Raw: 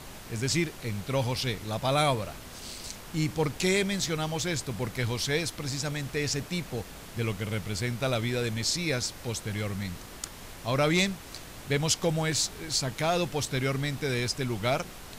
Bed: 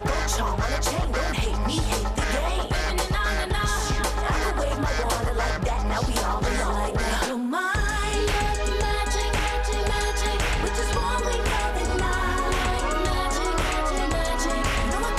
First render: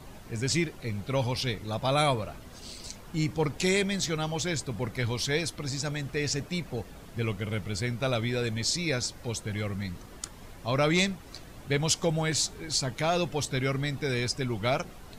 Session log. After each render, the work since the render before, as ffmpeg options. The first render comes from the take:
-af "afftdn=nr=9:nf=-45"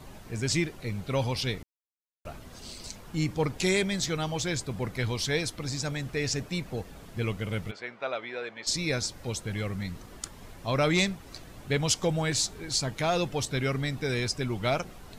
-filter_complex "[0:a]asplit=3[s0][s1][s2];[s0]afade=t=out:st=7.7:d=0.02[s3];[s1]highpass=570,lowpass=2300,afade=t=in:st=7.7:d=0.02,afade=t=out:st=8.66:d=0.02[s4];[s2]afade=t=in:st=8.66:d=0.02[s5];[s3][s4][s5]amix=inputs=3:normalize=0,asplit=3[s6][s7][s8];[s6]atrim=end=1.63,asetpts=PTS-STARTPTS,afade=t=out:st=1.626:d=0.004:c=hsin[s9];[s7]atrim=start=1.63:end=2.25,asetpts=PTS-STARTPTS,volume=0[s10];[s8]atrim=start=2.25,asetpts=PTS-STARTPTS,afade=t=in:d=0.004:c=hsin[s11];[s9][s10][s11]concat=n=3:v=0:a=1"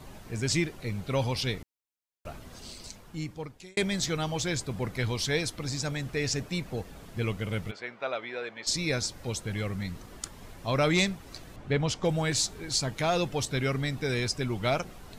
-filter_complex "[0:a]asettb=1/sr,asplit=3[s0][s1][s2];[s0]atrim=end=11.564[s3];[s1]atrim=start=11.56:end=12.05,asetpts=PTS-STARTPTS,afade=t=in:d=0.004:c=qsin,afade=t=out:st=0.486:d=0.004:c=qsin,aemphasis=mode=reproduction:type=75fm[s4];[s2]atrim=start=12.046[s5];[s3][s4]acrossfade=d=0.004:c1=hsin:c2=qsin[s6];[s6][s5]acrossfade=d=0.004:c1=qsin:c2=hsin,asplit=2[s7][s8];[s7]atrim=end=3.77,asetpts=PTS-STARTPTS,afade=t=out:st=2.53:d=1.24[s9];[s8]atrim=start=3.77,asetpts=PTS-STARTPTS,afade=t=in:d=0.004:c=hsin[s10];[s9][s10]concat=n=2:v=0:a=1"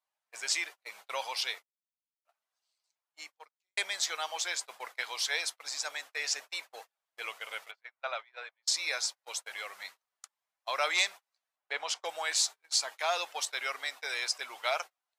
-af "agate=range=0.0141:threshold=0.02:ratio=16:detection=peak,highpass=f=720:w=0.5412,highpass=f=720:w=1.3066"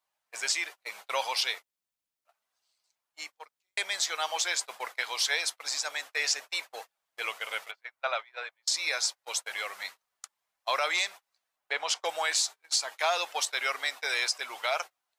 -af "acontrast=39,alimiter=limit=0.158:level=0:latency=1:release=272"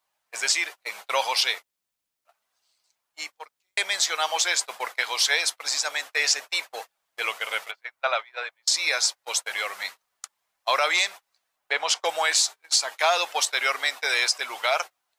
-af "volume=2"

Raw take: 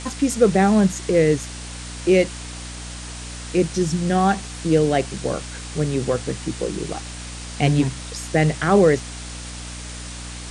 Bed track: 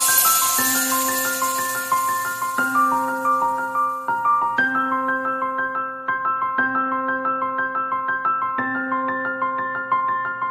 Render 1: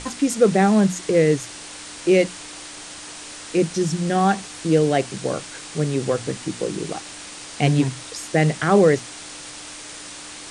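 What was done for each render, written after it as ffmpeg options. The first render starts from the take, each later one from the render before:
-af "bandreject=f=60:t=h:w=6,bandreject=f=120:t=h:w=6,bandreject=f=180:t=h:w=6,bandreject=f=240:t=h:w=6"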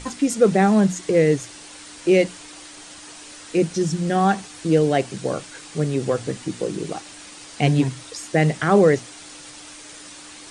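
-af "afftdn=nr=6:nf=-38"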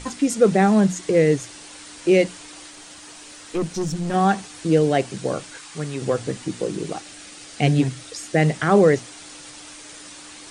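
-filter_complex "[0:a]asettb=1/sr,asplit=3[s0][s1][s2];[s0]atrim=end=2.704[s3];[s1]atrim=start=2.7:end=4.14,asetpts=PTS-STARTPTS,afade=t=in:d=0.004:c=qsin,afade=t=out:st=1.436:d=0.004:c=qsin,aeval=exprs='(tanh(8.91*val(0)+0.35)-tanh(0.35))/8.91':c=same[s4];[s2]atrim=start=4.136[s5];[s3][s4]acrossfade=d=0.004:c1=hsin:c2=qsin[s6];[s6][s5]acrossfade=d=0.004:c1=qsin:c2=hsin,asettb=1/sr,asplit=3[s7][s8][s9];[s7]atrim=end=5.574[s10];[s8]atrim=start=5.57:end=6.02,asetpts=PTS-STARTPTS,afade=t=in:d=0.004:c=qsin,afade=t=out:st=0.446:d=0.004:c=qsin,lowshelf=f=740:t=q:w=1.5:g=-6[s11];[s9]atrim=start=6.016[s12];[s10][s11]acrossfade=d=0.004:c1=hsin:c2=qsin[s13];[s13][s12]acrossfade=d=0.004:c1=qsin:c2=hsin,asettb=1/sr,asplit=3[s14][s15][s16];[s14]atrim=end=6.984[s17];[s15]atrim=start=6.98:end=8.39,asetpts=PTS-STARTPTS,afade=t=in:d=0.004:c=qsin,afade=t=out:st=1.406:d=0.004:c=qsin,equalizer=f=980:w=6.1:g=-8.5[s18];[s16]atrim=start=8.386[s19];[s17][s18]acrossfade=d=0.004:c1=hsin:c2=qsin[s20];[s20][s19]acrossfade=d=0.004:c1=qsin:c2=hsin"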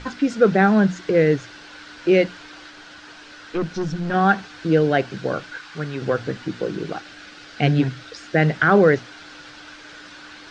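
-af "lowpass=f=4900:w=0.5412,lowpass=f=4900:w=1.3066,equalizer=f=1500:w=4.9:g=12"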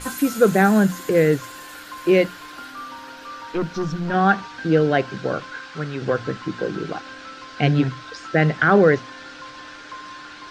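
-filter_complex "[1:a]volume=0.126[s0];[0:a][s0]amix=inputs=2:normalize=0"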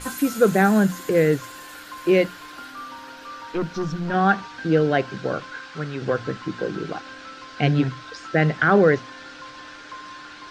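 -af "volume=0.841"

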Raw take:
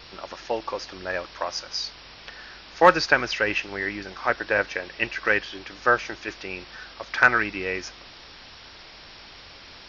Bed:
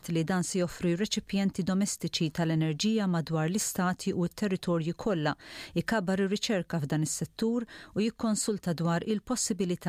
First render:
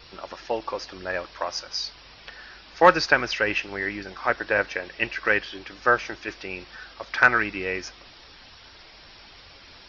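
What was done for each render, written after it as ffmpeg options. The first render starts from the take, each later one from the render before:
-af "afftdn=nr=6:nf=-46"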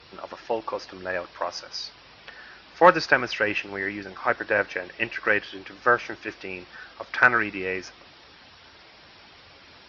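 -af "highpass=85,aemphasis=mode=reproduction:type=cd"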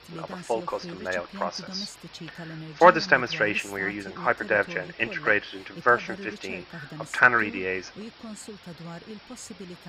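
-filter_complex "[1:a]volume=0.266[s0];[0:a][s0]amix=inputs=2:normalize=0"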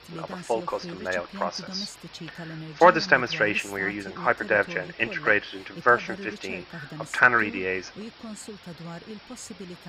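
-af "volume=1.12,alimiter=limit=0.708:level=0:latency=1"

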